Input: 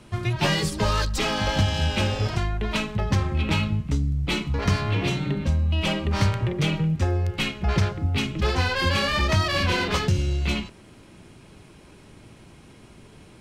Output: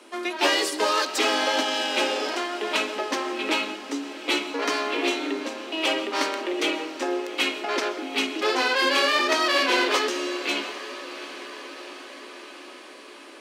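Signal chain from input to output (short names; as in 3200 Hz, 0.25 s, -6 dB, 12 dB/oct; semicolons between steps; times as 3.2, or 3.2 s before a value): steep high-pass 260 Hz 72 dB/oct; diffused feedback echo 0.745 s, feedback 66%, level -14.5 dB; on a send at -14.5 dB: reverb, pre-delay 80 ms; on the sum: gain +3 dB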